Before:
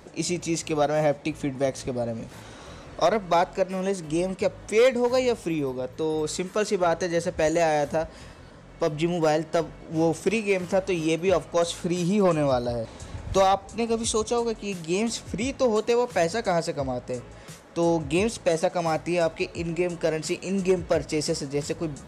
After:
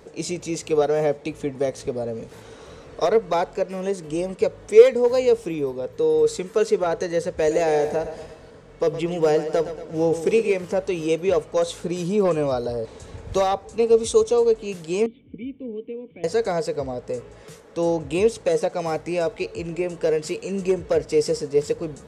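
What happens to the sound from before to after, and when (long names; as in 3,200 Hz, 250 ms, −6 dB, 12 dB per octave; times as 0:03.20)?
0:07.37–0:10.57: repeating echo 117 ms, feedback 52%, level −11 dB
0:15.06–0:16.24: formant resonators in series i
whole clip: parametric band 450 Hz +14.5 dB 0.23 octaves; level −2 dB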